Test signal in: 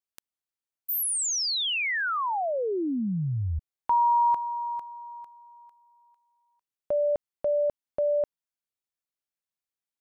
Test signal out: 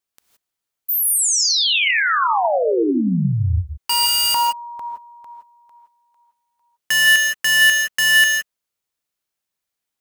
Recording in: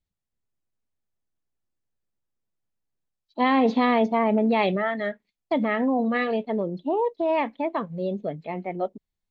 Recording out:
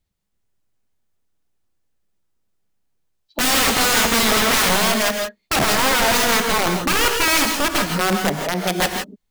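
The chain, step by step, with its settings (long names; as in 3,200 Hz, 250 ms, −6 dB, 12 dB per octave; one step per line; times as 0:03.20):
wrap-around overflow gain 22 dB
reverb whose tail is shaped and stops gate 190 ms rising, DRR 3.5 dB
level +8.5 dB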